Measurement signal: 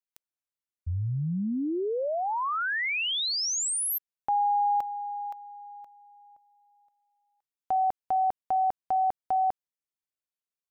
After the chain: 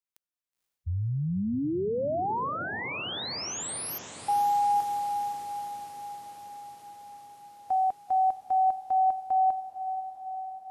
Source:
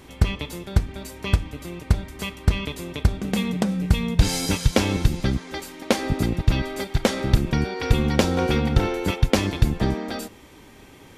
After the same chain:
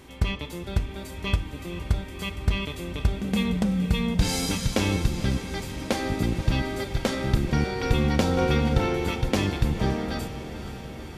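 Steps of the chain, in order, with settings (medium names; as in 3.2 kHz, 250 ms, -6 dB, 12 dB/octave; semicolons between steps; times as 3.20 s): harmonic-percussive split percussive -7 dB; echo that smears into a reverb 500 ms, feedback 71%, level -12.5 dB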